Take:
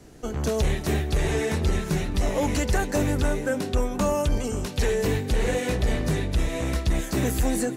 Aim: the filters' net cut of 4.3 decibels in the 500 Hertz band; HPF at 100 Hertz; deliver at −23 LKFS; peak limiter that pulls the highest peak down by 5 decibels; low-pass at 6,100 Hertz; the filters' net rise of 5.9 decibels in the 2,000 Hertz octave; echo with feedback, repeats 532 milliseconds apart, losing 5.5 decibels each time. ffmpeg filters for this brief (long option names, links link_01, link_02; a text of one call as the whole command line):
ffmpeg -i in.wav -af "highpass=100,lowpass=6100,equalizer=frequency=500:width_type=o:gain=-5.5,equalizer=frequency=2000:width_type=o:gain=7.5,alimiter=limit=-18.5dB:level=0:latency=1,aecho=1:1:532|1064|1596|2128|2660|3192|3724:0.531|0.281|0.149|0.079|0.0419|0.0222|0.0118,volume=4.5dB" out.wav